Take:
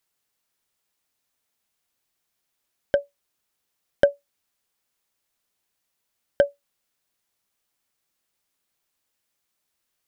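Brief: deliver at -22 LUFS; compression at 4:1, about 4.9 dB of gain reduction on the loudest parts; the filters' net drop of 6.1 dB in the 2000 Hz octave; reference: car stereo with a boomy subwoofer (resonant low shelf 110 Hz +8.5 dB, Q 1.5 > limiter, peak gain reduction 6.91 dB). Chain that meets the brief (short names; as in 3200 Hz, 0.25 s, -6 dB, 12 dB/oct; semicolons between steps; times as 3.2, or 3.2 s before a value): bell 2000 Hz -9 dB; compressor 4:1, threshold -19 dBFS; resonant low shelf 110 Hz +8.5 dB, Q 1.5; gain +13 dB; limiter -0.5 dBFS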